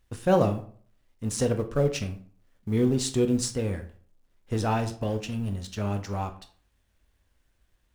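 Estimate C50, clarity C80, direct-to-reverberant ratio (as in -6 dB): 13.0 dB, 17.0 dB, 7.5 dB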